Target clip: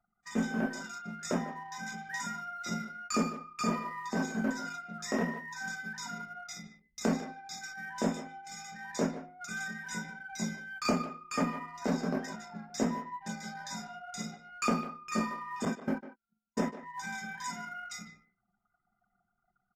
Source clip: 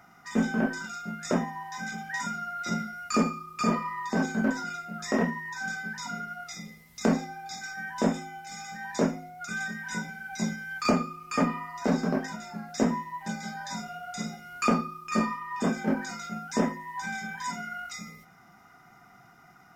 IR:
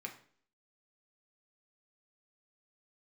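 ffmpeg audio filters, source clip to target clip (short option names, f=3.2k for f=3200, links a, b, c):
-filter_complex "[0:a]asettb=1/sr,asplit=3[a][b][c];[a]atrim=end=15.654[d];[b]atrim=start=15.65:end=16.83,asetpts=PTS-STARTPTS,afade=t=in:d=0.004:c=qsin,afade=t=out:st=1.176:d=0.004:c=qsin,agate=range=-24dB:threshold=-27dB:ratio=16:detection=peak[e];[c]atrim=start=16.826[f];[d][e]acrossfade=d=0.004:c1=hsin:c2=qsin[g];[g][f]acrossfade=d=0.004:c1=qsin:c2=hsin,anlmdn=0.1,highshelf=f=5.7k:g=7,asplit=2[h][i];[i]adelay=150,highpass=300,lowpass=3.4k,asoftclip=type=hard:threshold=-20dB,volume=-12dB[j];[h][j]amix=inputs=2:normalize=0,volume=-5.5dB" -ar 32000 -c:a aac -b:a 96k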